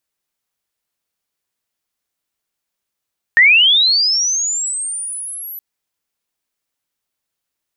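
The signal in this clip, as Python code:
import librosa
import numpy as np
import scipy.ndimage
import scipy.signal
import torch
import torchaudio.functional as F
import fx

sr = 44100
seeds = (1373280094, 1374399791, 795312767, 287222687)

y = fx.chirp(sr, length_s=2.22, from_hz=1800.0, to_hz=12000.0, law='linear', from_db=-5.0, to_db=-27.0)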